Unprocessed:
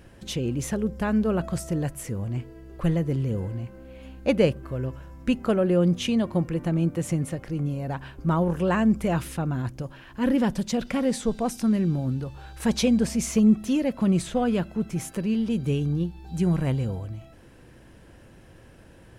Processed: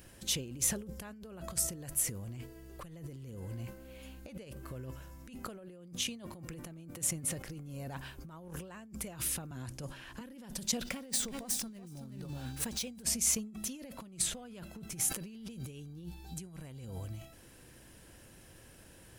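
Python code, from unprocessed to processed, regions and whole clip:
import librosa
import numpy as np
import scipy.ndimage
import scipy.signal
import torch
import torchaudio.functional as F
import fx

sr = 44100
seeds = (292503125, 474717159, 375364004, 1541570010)

y = fx.chain(x, sr, fx.cheby1_lowpass(hz=10000.0, order=2),
    fx.band_squash(depth_pct=40), at=(9.51, 10.21))
y = fx.chain(y, sr, fx.median_filter(points=3),
    fx.echo_single(ms=377, db=-9.0), at=(10.82, 13.03))
y = fx.over_compress(y, sr, threshold_db=-32.0, ratio=-1.0)
y = scipy.signal.lfilter([1.0, -0.8], [1.0], y)
y = fx.sustainer(y, sr, db_per_s=110.0)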